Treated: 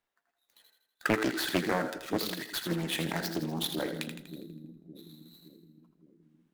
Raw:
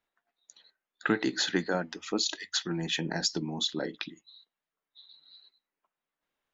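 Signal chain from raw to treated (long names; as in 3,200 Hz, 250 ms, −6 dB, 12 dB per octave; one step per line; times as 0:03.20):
gap after every zero crossing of 0.068 ms
echo with a time of its own for lows and highs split 340 Hz, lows 567 ms, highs 81 ms, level −7.5 dB
highs frequency-modulated by the lows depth 0.62 ms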